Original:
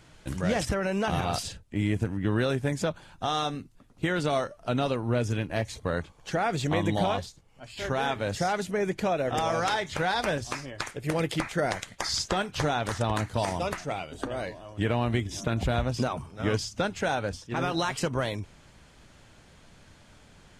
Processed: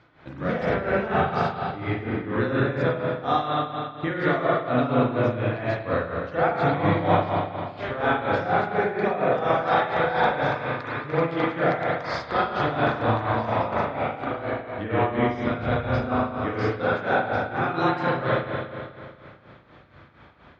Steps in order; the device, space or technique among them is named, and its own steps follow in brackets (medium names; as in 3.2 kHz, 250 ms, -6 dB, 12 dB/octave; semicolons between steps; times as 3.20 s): combo amplifier with spring reverb and tremolo (spring tank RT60 2.3 s, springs 36/40 ms, chirp 75 ms, DRR -8 dB; tremolo 4.2 Hz, depth 69%; cabinet simulation 92–3800 Hz, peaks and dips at 190 Hz -6 dB, 1.2 kHz +4 dB, 2.9 kHz -8 dB)